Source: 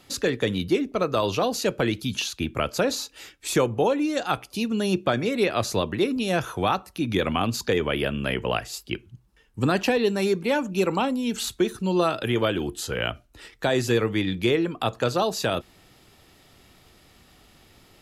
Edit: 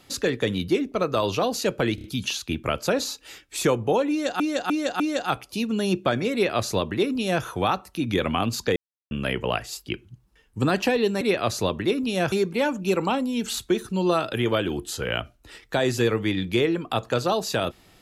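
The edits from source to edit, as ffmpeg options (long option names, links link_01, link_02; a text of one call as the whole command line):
ffmpeg -i in.wav -filter_complex "[0:a]asplit=11[link_01][link_02][link_03][link_04][link_05][link_06][link_07][link_08][link_09][link_10][link_11];[link_01]atrim=end=1.982[link_12];[link_02]atrim=start=1.948:end=1.982[link_13];[link_03]atrim=start=1.948:end=1.982[link_14];[link_04]atrim=start=1.948:end=4.312[link_15];[link_05]atrim=start=4.008:end=4.312[link_16];[link_06]atrim=start=4.008:end=4.312[link_17];[link_07]atrim=start=4.008:end=7.77,asetpts=PTS-STARTPTS,afade=type=out:start_time=3.758:duration=0.004:curve=hsin[link_18];[link_08]atrim=start=7.77:end=8.12,asetpts=PTS-STARTPTS,volume=0[link_19];[link_09]atrim=start=8.12:end=10.222,asetpts=PTS-STARTPTS,afade=type=in:duration=0.004:curve=hsin[link_20];[link_10]atrim=start=5.338:end=6.452[link_21];[link_11]atrim=start=10.218[link_22];[link_12][link_13]acrossfade=duration=0.004:curve1=hsin:curve2=hsin[link_23];[link_23][link_14]acrossfade=duration=0.004:curve1=hsin:curve2=hsin[link_24];[link_24][link_15]acrossfade=duration=0.004:curve1=hsin:curve2=hsin[link_25];[link_25][link_16]acrossfade=duration=0.004:curve1=hsin:curve2=hsin[link_26];[link_26][link_17]acrossfade=duration=0.004:curve1=hsin:curve2=hsin[link_27];[link_18][link_19][link_20]concat=n=3:v=0:a=1[link_28];[link_27][link_28]acrossfade=duration=0.004:curve1=hsin:curve2=hsin[link_29];[link_29][link_21]acrossfade=duration=0.004:curve1=hsin:curve2=hsin[link_30];[link_30][link_22]acrossfade=duration=0.004:curve1=hsin:curve2=hsin" out.wav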